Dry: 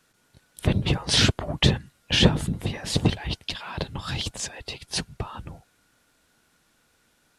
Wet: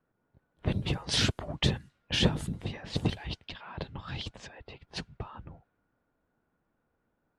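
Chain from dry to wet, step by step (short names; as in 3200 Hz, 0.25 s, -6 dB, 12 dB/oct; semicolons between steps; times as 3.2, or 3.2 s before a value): low-pass opened by the level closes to 980 Hz, open at -20 dBFS; gain -7.5 dB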